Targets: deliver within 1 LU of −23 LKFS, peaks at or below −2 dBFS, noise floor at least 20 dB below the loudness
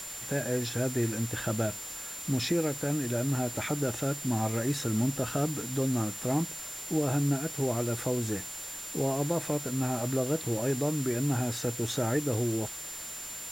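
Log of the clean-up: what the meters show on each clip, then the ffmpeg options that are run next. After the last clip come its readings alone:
interfering tone 7,200 Hz; level of the tone −40 dBFS; background noise floor −40 dBFS; target noise floor −51 dBFS; integrated loudness −30.5 LKFS; sample peak −16.5 dBFS; target loudness −23.0 LKFS
→ -af "bandreject=frequency=7200:width=30"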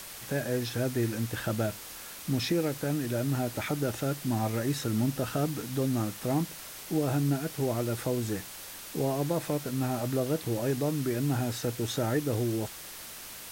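interfering tone none found; background noise floor −44 dBFS; target noise floor −51 dBFS
→ -af "afftdn=noise_reduction=7:noise_floor=-44"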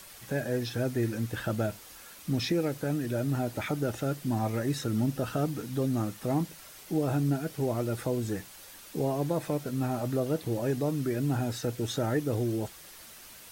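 background noise floor −50 dBFS; target noise floor −51 dBFS
→ -af "afftdn=noise_reduction=6:noise_floor=-50"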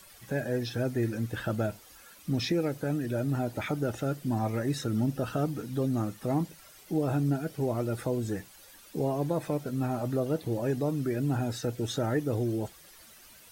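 background noise floor −54 dBFS; integrated loudness −31.0 LKFS; sample peak −17.5 dBFS; target loudness −23.0 LKFS
→ -af "volume=8dB"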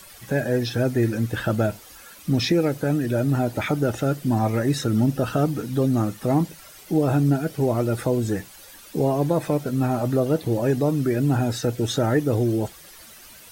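integrated loudness −23.0 LKFS; sample peak −9.5 dBFS; background noise floor −46 dBFS

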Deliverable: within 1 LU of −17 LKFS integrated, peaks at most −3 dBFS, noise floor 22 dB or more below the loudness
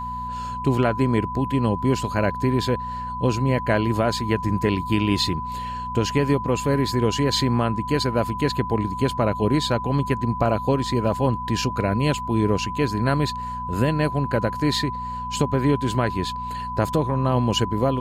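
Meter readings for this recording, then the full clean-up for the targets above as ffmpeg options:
mains hum 60 Hz; hum harmonics up to 240 Hz; level of the hum −33 dBFS; interfering tone 1,000 Hz; level of the tone −28 dBFS; integrated loudness −23.0 LKFS; sample peak −6.5 dBFS; target loudness −17.0 LKFS
→ -af "bandreject=frequency=60:width_type=h:width=4,bandreject=frequency=120:width_type=h:width=4,bandreject=frequency=180:width_type=h:width=4,bandreject=frequency=240:width_type=h:width=4"
-af "bandreject=frequency=1000:width=30"
-af "volume=6dB,alimiter=limit=-3dB:level=0:latency=1"

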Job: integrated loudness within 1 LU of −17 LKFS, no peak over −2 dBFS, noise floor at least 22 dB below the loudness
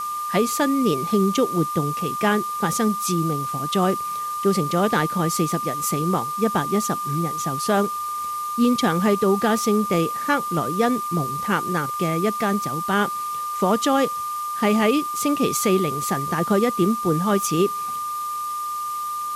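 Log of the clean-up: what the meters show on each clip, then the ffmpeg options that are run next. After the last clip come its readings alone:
interfering tone 1,200 Hz; level of the tone −25 dBFS; background noise floor −28 dBFS; target noise floor −44 dBFS; integrated loudness −22.0 LKFS; sample peak −7.5 dBFS; target loudness −17.0 LKFS
→ -af "bandreject=frequency=1200:width=30"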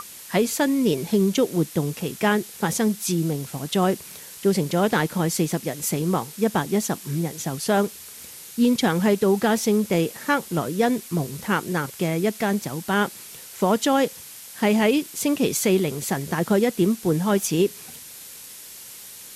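interfering tone none found; background noise floor −41 dBFS; target noise floor −45 dBFS
→ -af "afftdn=noise_reduction=6:noise_floor=-41"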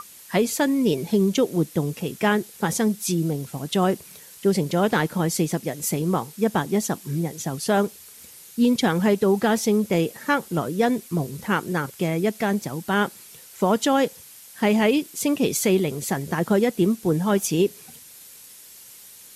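background noise floor −46 dBFS; integrated loudness −23.0 LKFS; sample peak −8.5 dBFS; target loudness −17.0 LKFS
→ -af "volume=6dB"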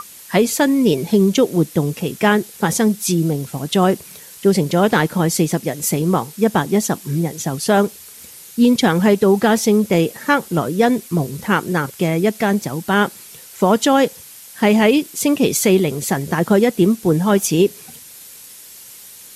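integrated loudness −17.0 LKFS; sample peak −2.5 dBFS; background noise floor −40 dBFS

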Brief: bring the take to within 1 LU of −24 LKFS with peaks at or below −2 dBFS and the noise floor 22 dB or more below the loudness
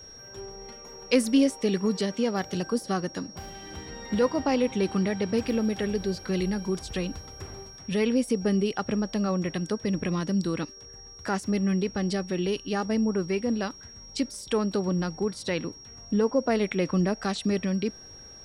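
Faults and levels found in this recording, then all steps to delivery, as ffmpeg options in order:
interfering tone 5,600 Hz; level of the tone −45 dBFS; integrated loudness −27.5 LKFS; sample peak −10.5 dBFS; target loudness −24.0 LKFS
→ -af "bandreject=frequency=5600:width=30"
-af "volume=3.5dB"

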